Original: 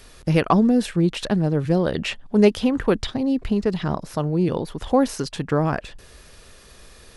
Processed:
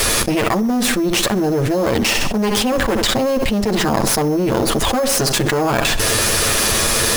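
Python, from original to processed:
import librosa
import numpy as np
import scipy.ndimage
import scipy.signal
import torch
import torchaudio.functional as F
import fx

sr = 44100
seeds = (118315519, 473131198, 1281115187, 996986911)

p1 = fx.lower_of_two(x, sr, delay_ms=9.0)
p2 = fx.low_shelf(p1, sr, hz=120.0, db=-7.0)
p3 = fx.sample_hold(p2, sr, seeds[0], rate_hz=5800.0, jitter_pct=0)
p4 = p2 + (p3 * 10.0 ** (-9.5 / 20.0))
p5 = fx.high_shelf(p4, sr, hz=4600.0, db=7.0)
p6 = p5 + fx.echo_feedback(p5, sr, ms=64, feedback_pct=40, wet_db=-18.5, dry=0)
p7 = fx.env_flatten(p6, sr, amount_pct=100)
y = p7 * 10.0 ** (-6.0 / 20.0)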